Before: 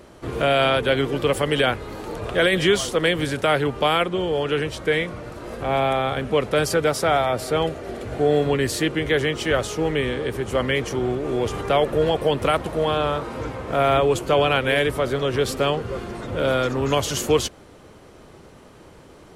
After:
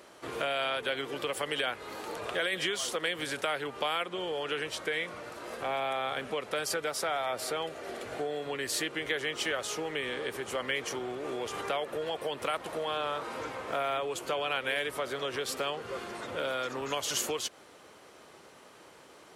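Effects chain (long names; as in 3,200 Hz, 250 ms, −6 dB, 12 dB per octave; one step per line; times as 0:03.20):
downward compressor, threshold −23 dBFS, peak gain reduction 9.5 dB
high-pass filter 850 Hz 6 dB per octave
level −1.5 dB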